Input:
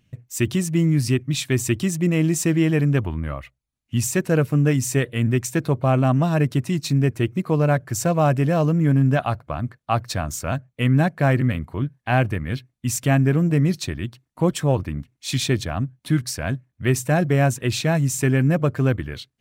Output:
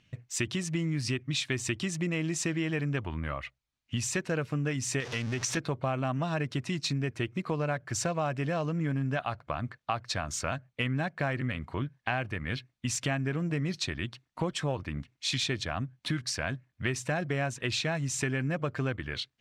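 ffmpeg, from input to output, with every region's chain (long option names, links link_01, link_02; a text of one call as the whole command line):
ffmpeg -i in.wav -filter_complex "[0:a]asettb=1/sr,asplit=3[link_01][link_02][link_03];[link_01]atrim=end=5.004[link_04];[link_02]atrim=start=5:end=5.57,asetpts=PTS-STARTPTS,afade=type=in:duration=0.004:curve=qsin,afade=type=out:start_time=0.566:duration=0.004:curve=qsin,aeval=exprs='val(0)+0.5*0.0422*sgn(val(0))':channel_layout=same,equalizer=frequency=5800:width_type=o:width=0.48:gain=7.5,acompressor=threshold=-24dB:ratio=2.5:attack=3.2:release=140:knee=1:detection=peak[link_05];[link_03]atrim=start=5.566[link_06];[link_04][link_05]acrossfade=duration=0.004:curve1=hsin:curve2=qsin[link_07];[link_07][link_06]acrossfade=duration=0.004:curve1=qsin:curve2=hsin,lowpass=5300,tiltshelf=frequency=730:gain=-5,acompressor=threshold=-29dB:ratio=4" out.wav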